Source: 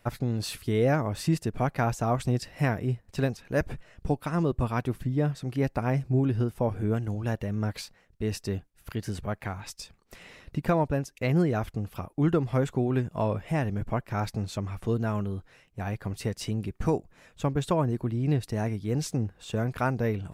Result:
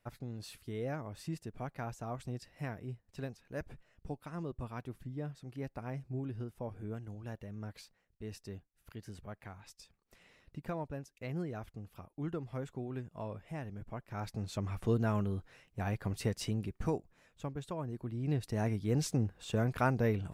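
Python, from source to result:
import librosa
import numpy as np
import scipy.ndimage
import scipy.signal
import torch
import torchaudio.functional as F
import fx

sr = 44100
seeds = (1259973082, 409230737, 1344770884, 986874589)

y = fx.gain(x, sr, db=fx.line((13.94, -14.5), (14.72, -3.0), (16.34, -3.0), (17.72, -15.0), (18.71, -3.0)))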